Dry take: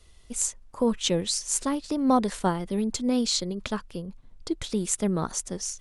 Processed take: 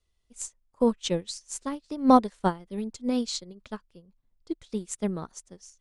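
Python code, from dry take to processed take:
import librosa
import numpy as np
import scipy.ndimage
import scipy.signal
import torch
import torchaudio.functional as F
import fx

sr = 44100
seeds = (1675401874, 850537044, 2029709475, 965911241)

y = scipy.signal.sosfilt(scipy.signal.butter(2, 9400.0, 'lowpass', fs=sr, output='sos'), x)
y = fx.upward_expand(y, sr, threshold_db=-35.0, expansion=2.5)
y = y * 10.0 ** (5.0 / 20.0)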